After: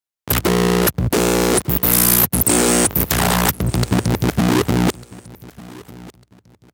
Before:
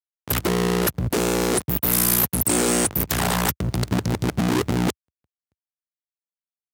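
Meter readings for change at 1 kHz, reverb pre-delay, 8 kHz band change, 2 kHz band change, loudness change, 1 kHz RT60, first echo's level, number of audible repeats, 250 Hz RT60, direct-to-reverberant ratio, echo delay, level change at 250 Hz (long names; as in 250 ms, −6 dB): +5.5 dB, no reverb audible, +5.5 dB, +5.5 dB, +5.5 dB, no reverb audible, −21.0 dB, 2, no reverb audible, no reverb audible, 1,199 ms, +5.5 dB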